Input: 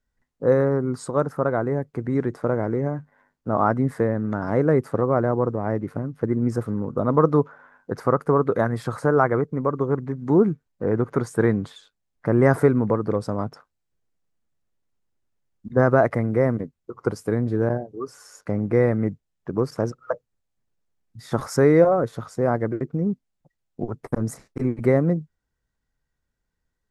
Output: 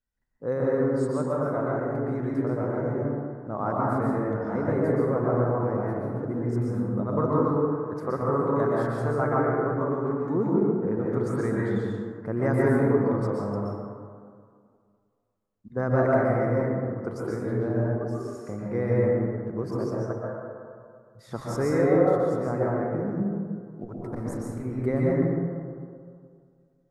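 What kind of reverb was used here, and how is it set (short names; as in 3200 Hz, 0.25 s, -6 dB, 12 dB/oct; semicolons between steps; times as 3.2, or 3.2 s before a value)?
plate-style reverb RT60 2.1 s, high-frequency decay 0.3×, pre-delay 0.11 s, DRR -5 dB; gain -10.5 dB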